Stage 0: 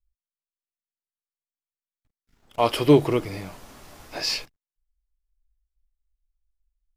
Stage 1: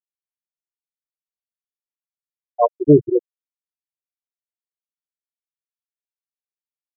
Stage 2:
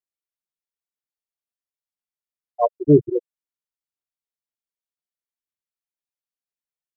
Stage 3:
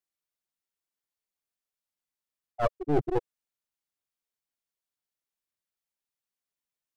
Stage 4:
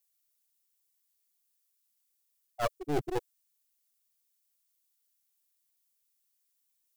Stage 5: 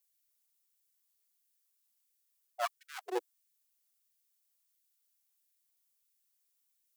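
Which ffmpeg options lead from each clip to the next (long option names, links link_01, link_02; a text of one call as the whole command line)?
ffmpeg -i in.wav -af "afftfilt=real='re*gte(hypot(re,im),0.501)':imag='im*gte(hypot(re,im),0.501)':win_size=1024:overlap=0.75,dynaudnorm=framelen=100:gausssize=3:maxgain=9dB" out.wav
ffmpeg -i in.wav -af "aphaser=in_gain=1:out_gain=1:delay=2.2:decay=0.32:speed=2:type=sinusoidal,volume=-3.5dB" out.wav
ffmpeg -i in.wav -af "areverse,acompressor=threshold=-20dB:ratio=12,areverse,aeval=exprs='clip(val(0),-1,0.0168)':channel_layout=same,volume=1.5dB" out.wav
ffmpeg -i in.wav -af "crystalizer=i=7:c=0,volume=-6dB" out.wav
ffmpeg -i in.wav -af "afftfilt=real='re*gte(b*sr/1024,330*pow(1500/330,0.5+0.5*sin(2*PI*1.5*pts/sr)))':imag='im*gte(b*sr/1024,330*pow(1500/330,0.5+0.5*sin(2*PI*1.5*pts/sr)))':win_size=1024:overlap=0.75,volume=-1dB" out.wav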